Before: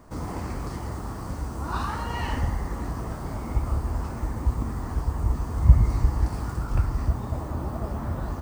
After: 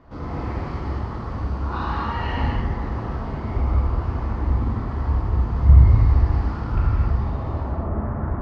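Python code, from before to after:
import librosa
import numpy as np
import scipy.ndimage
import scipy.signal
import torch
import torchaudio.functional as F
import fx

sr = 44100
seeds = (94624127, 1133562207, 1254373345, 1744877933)

y = fx.lowpass(x, sr, hz=fx.steps((0.0, 4100.0), (7.6, 2000.0)), slope=24)
y = y + 10.0 ** (-23.0 / 20.0) * np.pad(y, (int(1001 * sr / 1000.0), 0))[:len(y)]
y = fx.rev_gated(y, sr, seeds[0], gate_ms=300, shape='flat', drr_db=-5.0)
y = F.gain(torch.from_numpy(y), -2.0).numpy()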